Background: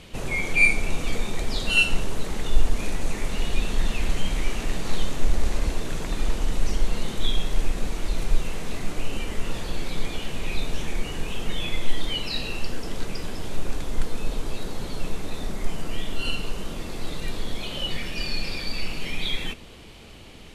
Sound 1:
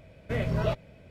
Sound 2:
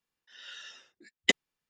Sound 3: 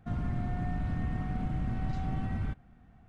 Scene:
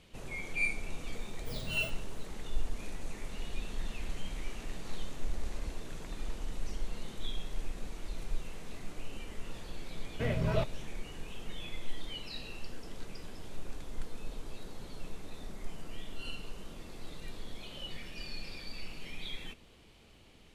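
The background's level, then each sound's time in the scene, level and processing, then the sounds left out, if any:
background −14 dB
0:01.16: mix in 1 −15.5 dB + samples in bit-reversed order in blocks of 16 samples
0:09.90: mix in 1 −3.5 dB
not used: 2, 3

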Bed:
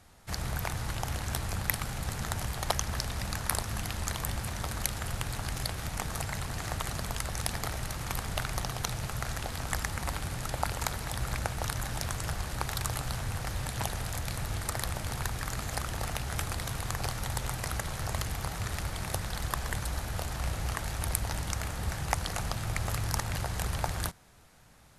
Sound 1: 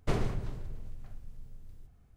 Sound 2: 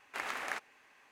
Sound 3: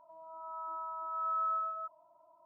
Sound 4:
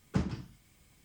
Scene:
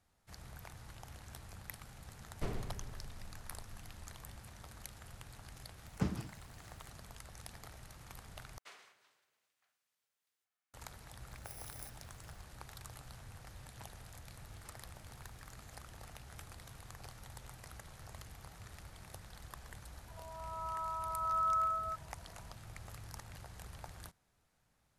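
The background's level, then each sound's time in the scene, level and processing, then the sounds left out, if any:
bed −18 dB
0:02.34: mix in 1 −9.5 dB
0:05.86: mix in 4 −4 dB
0:08.58: overwrite with 1 −11.5 dB + high-pass filter 1,500 Hz
0:11.31: mix in 2 −12.5 dB + samples in bit-reversed order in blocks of 32 samples
0:14.50: mix in 4 −16.5 dB + high-pass filter 1,100 Hz
0:20.08: mix in 3 −10 dB + flat-topped bell 900 Hz +11 dB

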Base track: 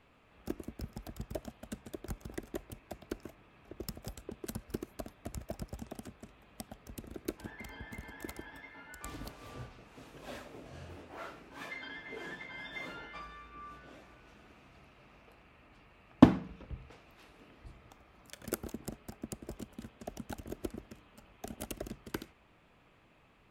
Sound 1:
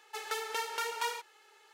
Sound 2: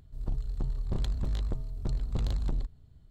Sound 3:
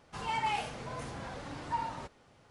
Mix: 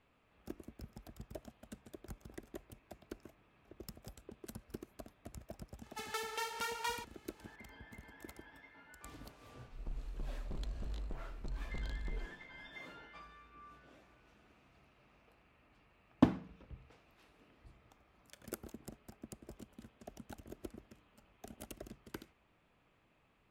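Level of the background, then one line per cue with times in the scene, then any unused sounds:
base track −8 dB
0:05.83: mix in 1 −4.5 dB
0:09.59: mix in 2 −10 dB + parametric band 99 Hz −11.5 dB
not used: 3

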